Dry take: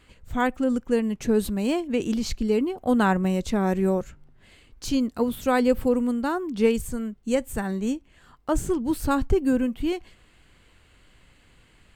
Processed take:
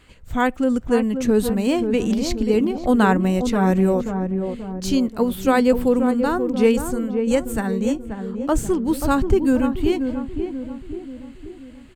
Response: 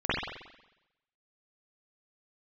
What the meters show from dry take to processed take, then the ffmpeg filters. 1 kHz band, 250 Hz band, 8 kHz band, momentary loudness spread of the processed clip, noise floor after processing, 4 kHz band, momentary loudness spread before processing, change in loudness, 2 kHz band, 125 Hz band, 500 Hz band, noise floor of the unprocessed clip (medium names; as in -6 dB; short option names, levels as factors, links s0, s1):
+4.5 dB, +5.0 dB, +4.0 dB, 11 LU, -42 dBFS, +4.0 dB, 8 LU, +4.5 dB, +4.0 dB, +5.5 dB, +5.0 dB, -58 dBFS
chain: -filter_complex "[0:a]asplit=2[s0][s1];[s1]adelay=533,lowpass=f=940:p=1,volume=0.501,asplit=2[s2][s3];[s3]adelay=533,lowpass=f=940:p=1,volume=0.54,asplit=2[s4][s5];[s5]adelay=533,lowpass=f=940:p=1,volume=0.54,asplit=2[s6][s7];[s7]adelay=533,lowpass=f=940:p=1,volume=0.54,asplit=2[s8][s9];[s9]adelay=533,lowpass=f=940:p=1,volume=0.54,asplit=2[s10][s11];[s11]adelay=533,lowpass=f=940:p=1,volume=0.54,asplit=2[s12][s13];[s13]adelay=533,lowpass=f=940:p=1,volume=0.54[s14];[s0][s2][s4][s6][s8][s10][s12][s14]amix=inputs=8:normalize=0,volume=1.58"